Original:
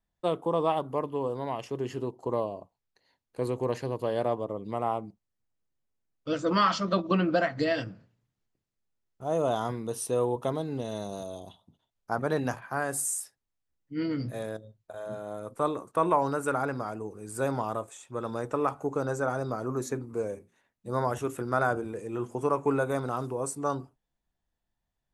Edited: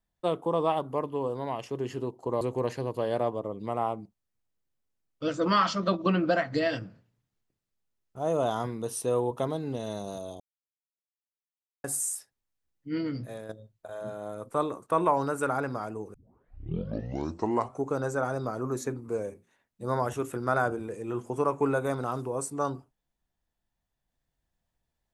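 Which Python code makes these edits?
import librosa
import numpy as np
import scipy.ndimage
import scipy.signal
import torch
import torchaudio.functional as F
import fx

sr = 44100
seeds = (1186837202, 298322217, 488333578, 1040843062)

y = fx.edit(x, sr, fx.cut(start_s=2.41, length_s=1.05),
    fx.silence(start_s=11.45, length_s=1.44),
    fx.fade_out_to(start_s=13.99, length_s=0.55, floor_db=-7.5),
    fx.tape_start(start_s=17.19, length_s=1.74), tone=tone)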